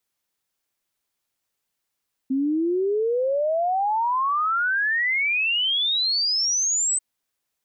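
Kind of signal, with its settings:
exponential sine sweep 260 Hz → 8,200 Hz 4.69 s −19.5 dBFS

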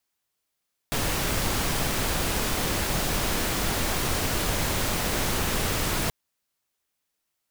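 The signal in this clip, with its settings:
noise pink, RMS −26 dBFS 5.18 s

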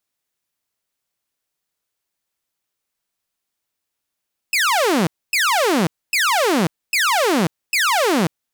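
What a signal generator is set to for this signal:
repeated falling chirps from 2,700 Hz, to 150 Hz, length 0.54 s saw, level −12 dB, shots 5, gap 0.26 s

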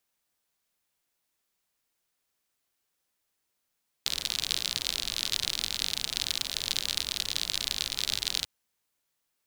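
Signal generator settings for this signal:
rain-like ticks over hiss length 4.39 s, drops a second 57, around 3,900 Hz, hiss −13.5 dB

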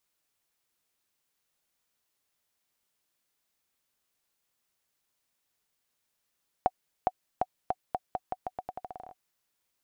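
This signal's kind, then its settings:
bouncing ball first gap 0.41 s, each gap 0.84, 741 Hz, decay 43 ms −11.5 dBFS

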